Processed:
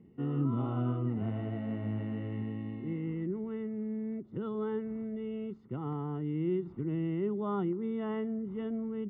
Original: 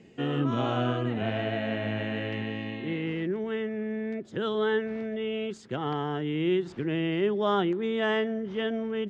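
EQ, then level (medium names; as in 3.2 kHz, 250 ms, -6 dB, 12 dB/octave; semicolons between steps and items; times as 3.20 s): Savitzky-Golay filter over 65 samples; distance through air 160 m; peaking EQ 620 Hz -14 dB 1.3 oct; 0.0 dB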